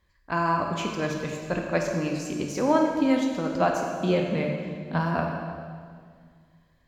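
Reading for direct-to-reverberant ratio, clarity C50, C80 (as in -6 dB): 1.0 dB, 3.0 dB, 4.0 dB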